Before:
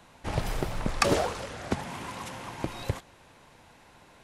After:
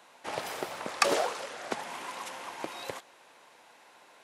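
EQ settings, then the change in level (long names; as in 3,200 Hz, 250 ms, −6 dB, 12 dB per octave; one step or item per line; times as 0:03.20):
high-pass filter 440 Hz 12 dB per octave
0.0 dB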